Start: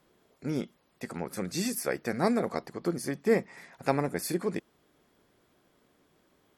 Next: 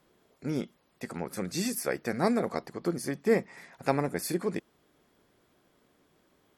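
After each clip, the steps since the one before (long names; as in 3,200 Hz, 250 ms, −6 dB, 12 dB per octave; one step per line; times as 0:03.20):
no processing that can be heard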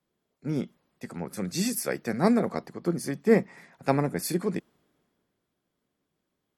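parametric band 180 Hz +5 dB 1.2 octaves
multiband upward and downward expander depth 40%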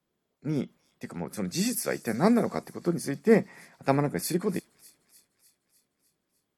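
delay with a high-pass on its return 301 ms, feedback 61%, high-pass 3,900 Hz, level −15.5 dB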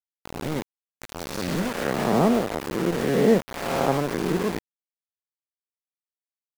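peak hold with a rise ahead of every peak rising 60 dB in 1.82 s
treble cut that deepens with the level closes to 1,200 Hz, closed at −18.5 dBFS
centre clipping without the shift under −25 dBFS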